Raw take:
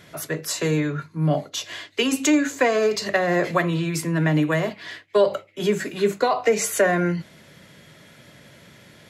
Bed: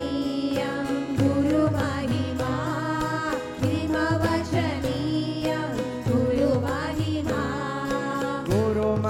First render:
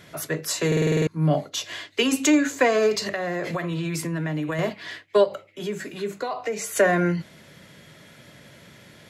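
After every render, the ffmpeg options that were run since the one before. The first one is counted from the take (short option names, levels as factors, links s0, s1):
-filter_complex "[0:a]asettb=1/sr,asplit=3[s0][s1][s2];[s0]atrim=end=3.054[s3];[s1]atrim=start=3.05:end=4.59,asetpts=PTS-STARTPTS,afade=t=in:d=0.004:c=qsin,afade=t=out:st=1.536:d=0.004:c=qsin,acompressor=threshold=0.0708:ratio=10:attack=3.2:release=140:knee=1:detection=peak[s4];[s2]atrim=start=4.586[s5];[s3][s4]acrossfade=d=0.004:c1=hsin:c2=qsin[s6];[s6][s5]acrossfade=d=0.004:c1=qsin:c2=hsin,asplit=3[s7][s8][s9];[s7]afade=t=out:st=5.23:d=0.02[s10];[s8]acompressor=threshold=0.01:ratio=1.5:attack=3.2:release=140:knee=1:detection=peak,afade=t=in:st=5.23:d=0.02,afade=t=out:st=6.75:d=0.02[s11];[s9]afade=t=in:st=6.75:d=0.02[s12];[s10][s11][s12]amix=inputs=3:normalize=0,asplit=9[s13][s14][s15][s16][s17][s18][s19][s20][s21];[s13]atrim=end=0.722[s22];[s14]atrim=start=0.668:end=0.722[s23];[s15]atrim=start=0.668:end=0.722[s24];[s16]atrim=start=0.668:end=0.722[s25];[s17]atrim=start=0.668:end=0.722[s26];[s18]atrim=start=0.668:end=0.722[s27];[s19]atrim=start=0.668:end=0.722[s28];[s20]atrim=start=0.668:end=0.722[s29];[s21]atrim=start=1.068[s30];[s22][s23]acrossfade=d=0.004:c1=hsin:c2=hsin[s31];[s31][s24]acrossfade=d=0.004:c1=hsin:c2=hsin[s32];[s32][s25]acrossfade=d=0.004:c1=hsin:c2=hsin[s33];[s33][s26]acrossfade=d=0.004:c1=hsin:c2=hsin[s34];[s34][s27]acrossfade=d=0.004:c1=hsin:c2=hsin[s35];[s35][s28]acrossfade=d=0.004:c1=hsin:c2=hsin[s36];[s36][s29]acrossfade=d=0.004:c1=hsin:c2=hsin[s37];[s37][s30]acrossfade=d=0.004:c1=hsin:c2=hsin"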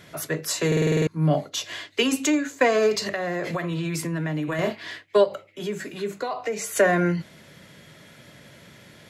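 -filter_complex "[0:a]asettb=1/sr,asplit=3[s0][s1][s2];[s0]atrim=end=4.454[s3];[s1]atrim=start=4.45:end=4.91,asetpts=PTS-STARTPTS,afade=t=in:d=0.004:c=qsin,afade=t=out:st=0.456:d=0.004:c=qsin,asplit=2[s4][s5];[s5]adelay=28,volume=0.447[s6];[s4][s6]amix=inputs=2:normalize=0,atrim=end_sample=20286[s7];[s2]atrim=start=4.906[s8];[s3][s7]acrossfade=d=0.004:c1=hsin:c2=qsin[s9];[s9][s8]acrossfade=d=0.004:c1=qsin:c2=hsin,asplit=2[s10][s11];[s10]atrim=end=2.61,asetpts=PTS-STARTPTS,afade=t=out:st=2.02:d=0.59:silence=0.334965[s12];[s11]atrim=start=2.61,asetpts=PTS-STARTPTS,afade=t=in:d=0.004:c=hsin:silence=0.334965[s13];[s12][s13]concat=n=2:v=0:a=1"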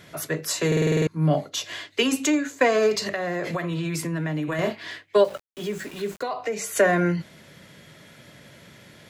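-filter_complex "[0:a]asettb=1/sr,asplit=3[s0][s1][s2];[s0]atrim=end=5.184[s3];[s1]atrim=start=5.18:end=6.23,asetpts=PTS-STARTPTS,afade=t=in:d=0.004:c=qsin,afade=t=out:st=1.046:d=0.004:c=qsin,aeval=exprs='val(0)*gte(abs(val(0)),0.01)':c=same[s4];[s2]atrim=start=6.226[s5];[s3][s4]acrossfade=d=0.004:c1=hsin:c2=qsin[s6];[s6][s5]acrossfade=d=0.004:c1=qsin:c2=hsin"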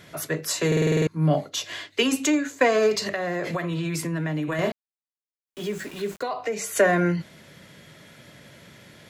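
-filter_complex "[0:a]asplit=3[s0][s1][s2];[s0]atrim=end=4.72,asetpts=PTS-STARTPTS,afade=t=out:st=4.716:d=0.004:c=hsin[s3];[s1]atrim=start=4.72:end=5.47,asetpts=PTS-STARTPTS,volume=0[s4];[s2]atrim=start=5.47,asetpts=PTS-STARTPTS,afade=t=in:d=0.004:c=hsin[s5];[s3][s4][s5]concat=n=3:v=0:a=1"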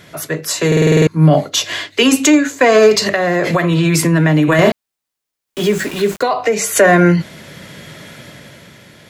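-af "dynaudnorm=f=110:g=17:m=2.99,alimiter=level_in=2.11:limit=0.891:release=50:level=0:latency=1"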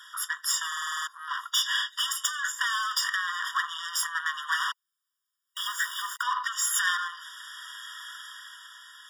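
-af "aeval=exprs='(tanh(7.94*val(0)+0.3)-tanh(0.3))/7.94':c=same,afftfilt=real='re*eq(mod(floor(b*sr/1024/950),2),1)':imag='im*eq(mod(floor(b*sr/1024/950),2),1)':win_size=1024:overlap=0.75"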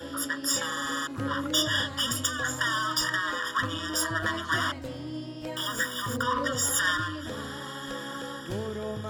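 -filter_complex "[1:a]volume=0.282[s0];[0:a][s0]amix=inputs=2:normalize=0"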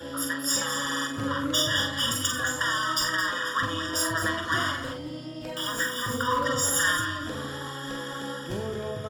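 -filter_complex "[0:a]asplit=2[s0][s1];[s1]adelay=44,volume=0.473[s2];[s0][s2]amix=inputs=2:normalize=0,aecho=1:1:50|218:0.335|0.316"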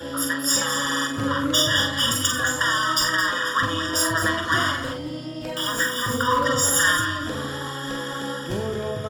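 -af "volume=1.78"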